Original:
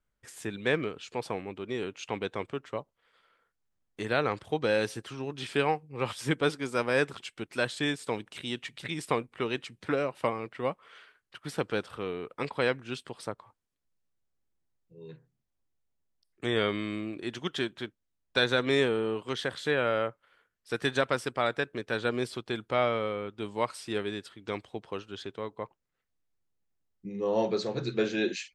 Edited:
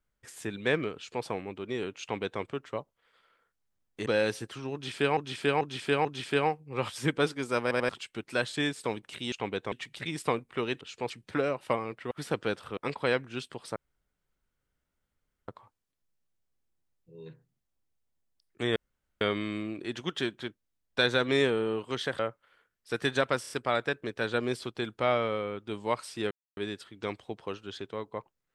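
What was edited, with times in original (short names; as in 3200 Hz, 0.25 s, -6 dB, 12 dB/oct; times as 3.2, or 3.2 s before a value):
0.95–1.24 copy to 9.64
2.01–2.41 copy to 8.55
4.06–4.61 cut
5.28–5.72 loop, 4 plays
6.85 stutter in place 0.09 s, 3 plays
10.65–11.38 cut
12.04–12.32 cut
13.31 insert room tone 1.72 s
16.59 insert room tone 0.45 s
19.57–19.99 cut
21.21 stutter 0.03 s, 4 plays
24.02 insert silence 0.26 s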